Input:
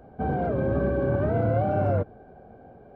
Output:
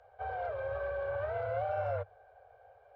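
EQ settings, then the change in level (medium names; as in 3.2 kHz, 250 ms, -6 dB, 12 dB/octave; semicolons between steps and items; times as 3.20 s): elliptic band-stop 100–510 Hz, stop band 40 dB; distance through air 140 m; tilt EQ +3 dB/octave; -4.5 dB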